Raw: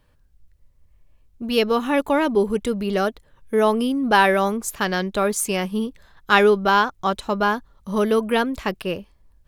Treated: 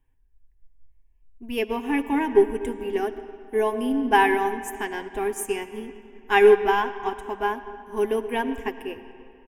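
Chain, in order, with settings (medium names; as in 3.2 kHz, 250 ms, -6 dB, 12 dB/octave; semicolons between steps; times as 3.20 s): bass shelf 190 Hz +7.5 dB; static phaser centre 860 Hz, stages 8; comb 7.5 ms, depth 38%; on a send at -7.5 dB: reverberation RT60 3.3 s, pre-delay 35 ms; on the sum: upward expansion 1.5:1, over -35 dBFS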